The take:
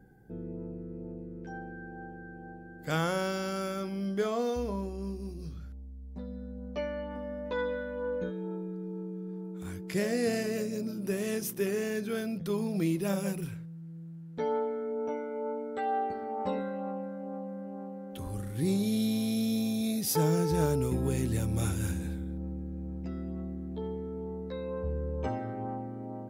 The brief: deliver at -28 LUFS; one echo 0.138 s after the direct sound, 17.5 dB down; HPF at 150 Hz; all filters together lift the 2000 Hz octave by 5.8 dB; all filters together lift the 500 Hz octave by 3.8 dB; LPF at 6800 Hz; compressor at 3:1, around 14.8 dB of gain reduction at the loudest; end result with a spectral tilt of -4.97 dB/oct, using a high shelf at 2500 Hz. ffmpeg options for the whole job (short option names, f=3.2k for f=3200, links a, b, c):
-af "highpass=150,lowpass=6.8k,equalizer=f=500:t=o:g=4,equalizer=f=2k:t=o:g=3.5,highshelf=f=2.5k:g=9,acompressor=threshold=-42dB:ratio=3,aecho=1:1:138:0.133,volume=14.5dB"